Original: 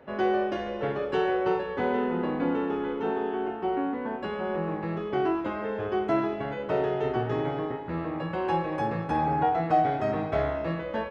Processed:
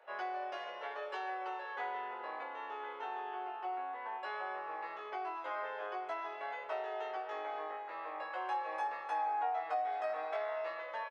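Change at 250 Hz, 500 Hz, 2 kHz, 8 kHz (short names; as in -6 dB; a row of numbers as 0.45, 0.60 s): -28.5 dB, -14.5 dB, -6.5 dB, n/a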